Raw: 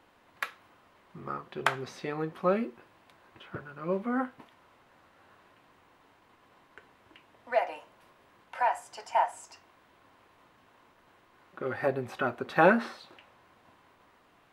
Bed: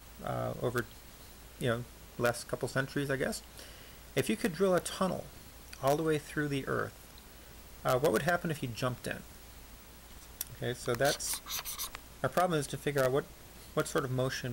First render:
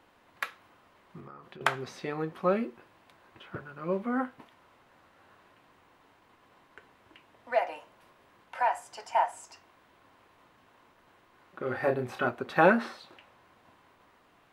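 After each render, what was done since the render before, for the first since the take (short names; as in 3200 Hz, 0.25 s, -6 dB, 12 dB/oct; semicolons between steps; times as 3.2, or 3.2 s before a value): 1.2–1.61 compressor 8:1, threshold -44 dBFS; 11.64–12.29 doubler 32 ms -5.5 dB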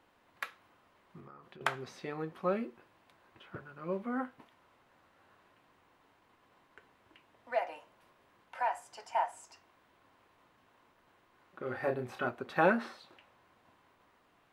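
gain -5.5 dB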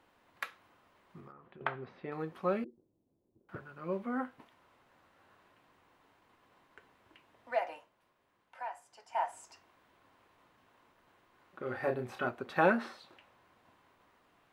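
1.32–2.12 air absorption 440 m; 2.64–3.49 ladder low-pass 460 Hz, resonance 25%; 7.72–9.25 dip -8.5 dB, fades 0.18 s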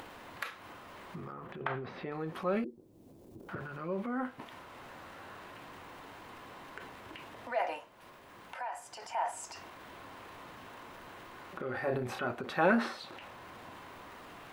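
transient shaper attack -2 dB, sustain +8 dB; upward compressor, threshold -34 dBFS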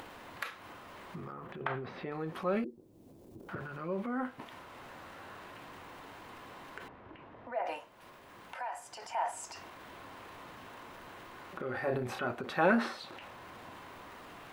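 6.88–7.66 tape spacing loss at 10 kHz 41 dB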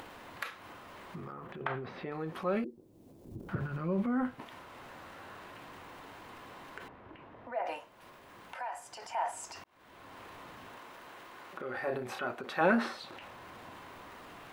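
3.25–4.35 tone controls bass +11 dB, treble 0 dB; 9.64–10.21 fade in; 10.78–12.61 low shelf 180 Hz -12 dB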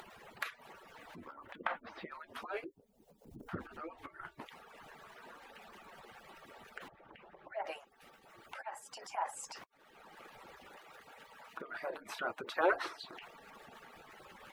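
median-filter separation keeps percussive; low shelf 200 Hz -5 dB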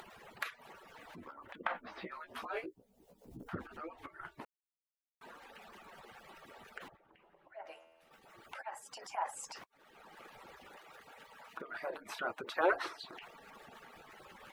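1.73–3.43 doubler 16 ms -4 dB; 4.45–5.21 mute; 6.97–8.11 resonator 82 Hz, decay 1.6 s, mix 70%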